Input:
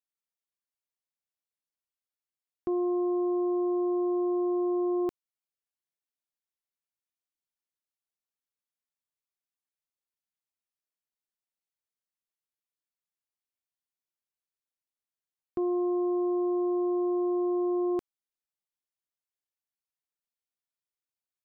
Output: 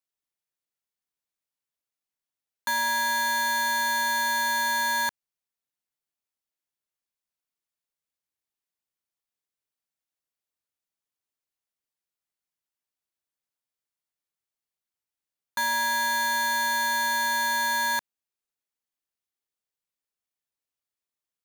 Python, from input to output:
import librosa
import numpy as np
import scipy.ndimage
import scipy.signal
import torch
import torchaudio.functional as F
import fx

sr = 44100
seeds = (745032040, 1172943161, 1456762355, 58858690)

y = x * np.sign(np.sin(2.0 * np.pi * 1300.0 * np.arange(len(x)) / sr))
y = y * 10.0 ** (2.0 / 20.0)